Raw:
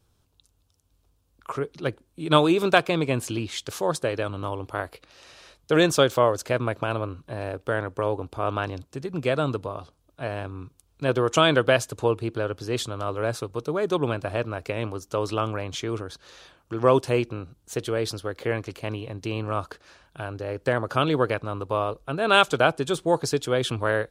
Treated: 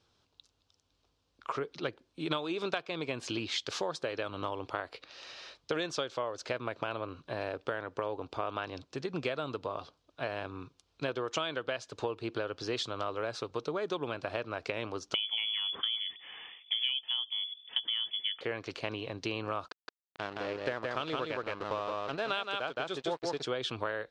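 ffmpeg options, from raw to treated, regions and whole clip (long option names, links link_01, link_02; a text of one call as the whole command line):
ffmpeg -i in.wav -filter_complex "[0:a]asettb=1/sr,asplit=3[link_01][link_02][link_03];[link_01]atrim=end=15.144[link_04];[link_02]atrim=start=15.14:end=18.41,asetpts=PTS-STARTPTS,afade=type=in:duration=0.004:curve=qsin,afade=type=out:start_time=3.266:duration=0.004:curve=qsin,lowshelf=frequency=420:gain=8,lowpass=frequency=3000:width_type=q:width=0.5098,lowpass=frequency=3000:width_type=q:width=0.6013,lowpass=frequency=3000:width_type=q:width=0.9,lowpass=frequency=3000:width_type=q:width=2.563,afreqshift=-3500,bandreject=frequency=600:width=7.3[link_05];[link_03]atrim=start=18.406[link_06];[link_04][link_05]acrossfade=duration=0.004:curve1=hsin:curve2=qsin[link_07];[link_07][link_06]acrossfade=duration=0.004:curve1=qsin:curve2=hsin,asettb=1/sr,asplit=3[link_08][link_09][link_10];[link_08]atrim=end=19.684[link_11];[link_09]atrim=start=19.68:end=23.43,asetpts=PTS-STARTPTS,afade=type=in:duration=0.004:curve=qsin,afade=type=out:start_time=3.746:duration=0.004:curve=qsin,aeval=exprs='sgn(val(0))*max(abs(val(0))-0.0141,0)':channel_layout=same,aecho=1:1:168:0.708,atrim=end_sample=165375[link_12];[link_10]atrim=start=23.426[link_13];[link_11][link_12]acrossfade=duration=0.004:curve1=hsin:curve2=qsin[link_14];[link_14][link_13]acrossfade=duration=0.004:curve1=qsin:curve2=hsin,lowpass=frequency=4900:width=0.5412,lowpass=frequency=4900:width=1.3066,aemphasis=mode=production:type=bsi,acompressor=threshold=-30dB:ratio=12" out.wav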